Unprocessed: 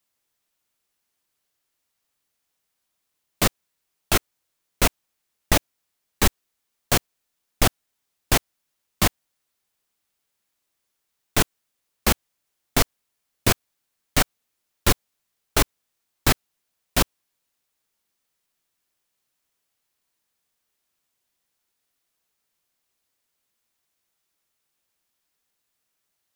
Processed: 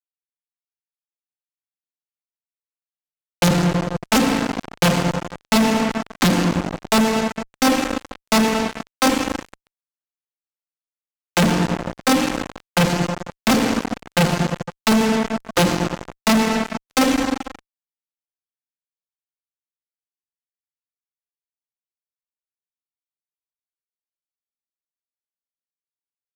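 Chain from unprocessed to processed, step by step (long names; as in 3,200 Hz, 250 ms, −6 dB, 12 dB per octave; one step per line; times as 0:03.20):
vocoder with an arpeggio as carrier major triad, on F3, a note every 519 ms
feedback delay network reverb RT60 1.9 s, low-frequency decay 1.5×, high-frequency decay 0.75×, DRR 16.5 dB
fuzz pedal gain 48 dB, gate −45 dBFS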